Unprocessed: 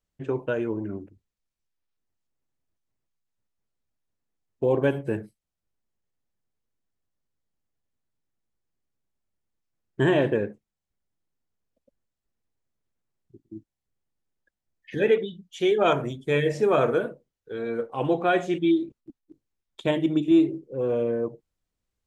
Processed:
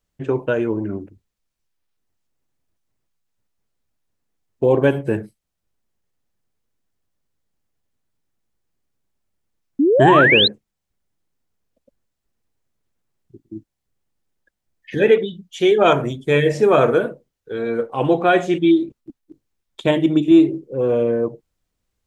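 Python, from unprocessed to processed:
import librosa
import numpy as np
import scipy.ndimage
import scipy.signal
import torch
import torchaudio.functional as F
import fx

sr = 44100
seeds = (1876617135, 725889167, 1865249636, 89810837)

y = fx.spec_paint(x, sr, seeds[0], shape='rise', start_s=9.79, length_s=0.69, low_hz=260.0, high_hz=4200.0, level_db=-21.0)
y = y * librosa.db_to_amplitude(7.0)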